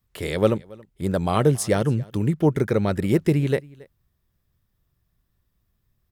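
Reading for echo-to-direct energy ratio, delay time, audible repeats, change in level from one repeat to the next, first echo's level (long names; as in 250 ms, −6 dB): −23.5 dB, 276 ms, 1, repeats not evenly spaced, −23.5 dB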